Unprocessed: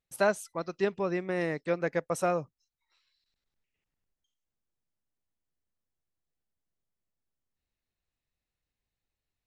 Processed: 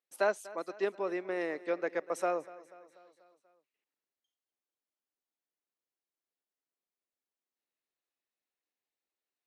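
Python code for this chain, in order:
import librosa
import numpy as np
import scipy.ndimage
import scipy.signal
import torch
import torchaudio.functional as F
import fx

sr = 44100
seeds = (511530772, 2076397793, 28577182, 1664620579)

y = scipy.signal.sosfilt(scipy.signal.butter(4, 280.0, 'highpass', fs=sr, output='sos'), x)
y = fx.high_shelf(y, sr, hz=5000.0, db=-5.5)
y = fx.echo_feedback(y, sr, ms=243, feedback_pct=57, wet_db=-19)
y = y * 10.0 ** (-3.0 / 20.0)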